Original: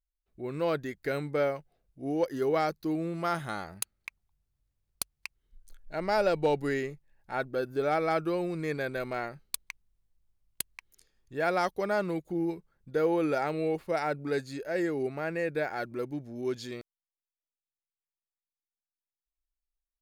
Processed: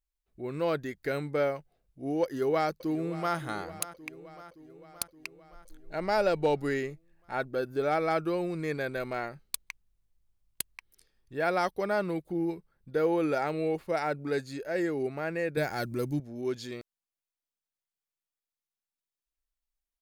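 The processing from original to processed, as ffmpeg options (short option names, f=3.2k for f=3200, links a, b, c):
-filter_complex "[0:a]asplit=2[a][b];[b]afade=t=in:st=2.23:d=0.01,afade=t=out:st=3.36:d=0.01,aecho=0:1:570|1140|1710|2280|2850|3420|3990:0.16788|0.109122|0.0709295|0.0461042|0.0299677|0.019479|0.0126614[c];[a][c]amix=inputs=2:normalize=0,asettb=1/sr,asplit=3[d][e][f];[d]atrim=end=10.754[g];[e]atrim=start=10.75:end=13.01,asetpts=PTS-STARTPTS,afade=t=in:d=0.004:c=qsin,afade=t=out:st=2.256:d=0.004:c=qsin,bandreject=f=6.8k:w=5.4[h];[f]atrim=start=13.006[i];[g][h]acrossfade=d=0.004:c1=hsin:c2=qsin[j];[j][i]acrossfade=d=0.004:c1=qsin:c2=hsin,asettb=1/sr,asplit=3[k][l][m];[k]atrim=end=15.574[n];[l]atrim=start=15.57:end=16.2,asetpts=PTS-STARTPTS,afade=t=in:d=0.004:c=qsin,afade=t=out:st=0.626:d=0.004:c=qsin,bass=f=250:g=11,treble=f=4k:g=13[o];[m]atrim=start=16.196[p];[n][o]acrossfade=d=0.004:c1=hsin:c2=qsin[q];[q][p]acrossfade=d=0.004:c1=qsin:c2=hsin"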